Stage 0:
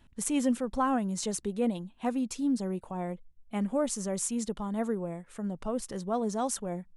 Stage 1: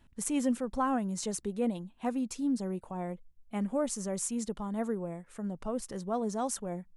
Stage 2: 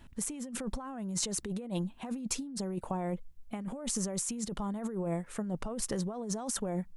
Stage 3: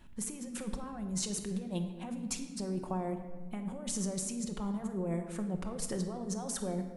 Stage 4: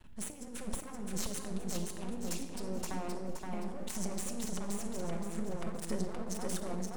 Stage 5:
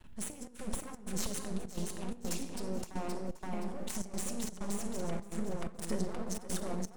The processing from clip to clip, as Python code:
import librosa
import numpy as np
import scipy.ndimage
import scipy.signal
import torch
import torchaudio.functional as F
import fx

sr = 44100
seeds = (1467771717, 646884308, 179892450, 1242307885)

y1 = fx.peak_eq(x, sr, hz=3400.0, db=-2.5, octaves=0.77)
y1 = y1 * 10.0 ** (-2.0 / 20.0)
y2 = fx.over_compress(y1, sr, threshold_db=-39.0, ratio=-1.0)
y2 = y2 * 10.0 ** (3.0 / 20.0)
y3 = fx.room_shoebox(y2, sr, seeds[0], volume_m3=1300.0, walls='mixed', distance_m=1.0)
y3 = y3 * 10.0 ** (-3.5 / 20.0)
y4 = np.maximum(y3, 0.0)
y4 = fx.echo_feedback(y4, sr, ms=522, feedback_pct=38, wet_db=-3.0)
y4 = y4 * 10.0 ** (1.0 / 20.0)
y5 = fx.step_gate(y4, sr, bpm=127, pattern='xxxx.xxx.x', floor_db=-12.0, edge_ms=4.5)
y5 = y5 * 10.0 ** (1.0 / 20.0)